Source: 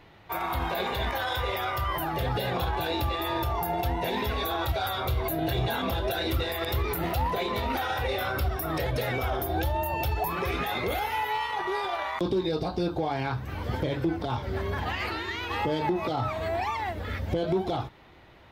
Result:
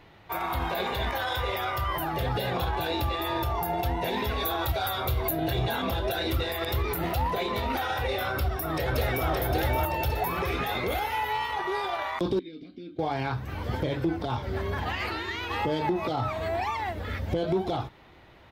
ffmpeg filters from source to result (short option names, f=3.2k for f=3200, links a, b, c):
-filter_complex "[0:a]asettb=1/sr,asplit=3[a][b][c];[a]atrim=end=4.404[d];[b]atrim=start=4.4:end=5.31,asetpts=PTS-STARTPTS,afade=t=in:d=0.004:c=qsin,afade=t=out:st=0.906:d=0.004:c=qsin,highshelf=f=12k:g=9[e];[c]atrim=start=5.306[f];[d][e]acrossfade=d=0.004:c1=hsin:c2=qsin[g];[g][f]acrossfade=d=0.004:c1=qsin:c2=hsin,asplit=2[h][i];[i]afade=t=in:st=8.3:d=0.01,afade=t=out:st=9.28:d=0.01,aecho=0:1:570|1140|1710|2280|2850|3420|3990:0.749894|0.374947|0.187474|0.0937368|0.0468684|0.0234342|0.0117171[j];[h][j]amix=inputs=2:normalize=0,asettb=1/sr,asplit=3[k][l][m];[k]atrim=end=12.394[n];[l]atrim=start=12.39:end=12.99,asetpts=PTS-STARTPTS,afade=t=in:d=0.004:c=qsin,afade=t=out:st=0.596:d=0.004:c=qsin,asplit=3[o][p][q];[o]bandpass=f=270:t=q:w=8,volume=0dB[r];[p]bandpass=f=2.29k:t=q:w=8,volume=-6dB[s];[q]bandpass=f=3.01k:t=q:w=8,volume=-9dB[t];[r][s][t]amix=inputs=3:normalize=0[u];[m]atrim=start=12.986[v];[n][u]acrossfade=d=0.004:c1=hsin:c2=qsin[w];[w][v]acrossfade=d=0.004:c1=qsin:c2=hsin"